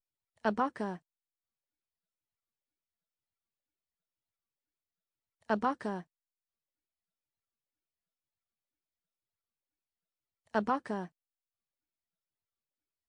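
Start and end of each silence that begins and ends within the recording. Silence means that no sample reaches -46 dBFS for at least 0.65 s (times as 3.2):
0.97–5.49
6.02–10.54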